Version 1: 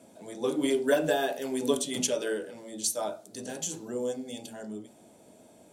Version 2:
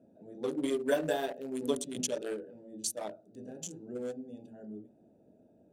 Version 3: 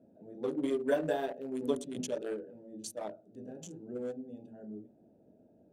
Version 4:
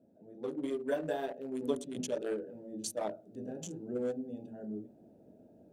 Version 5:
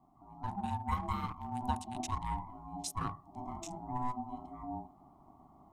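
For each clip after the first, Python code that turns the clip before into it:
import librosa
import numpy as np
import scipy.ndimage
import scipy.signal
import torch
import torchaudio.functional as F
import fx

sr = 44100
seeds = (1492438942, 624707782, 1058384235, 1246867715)

y1 = fx.wiener(x, sr, points=41)
y1 = y1 * 10.0 ** (-4.0 / 20.0)
y2 = fx.high_shelf(y1, sr, hz=2800.0, db=-10.5)
y3 = fx.rider(y2, sr, range_db=4, speed_s=0.5)
y4 = y3 * np.sin(2.0 * np.pi * 500.0 * np.arange(len(y3)) / sr)
y4 = y4 * 10.0 ** (2.0 / 20.0)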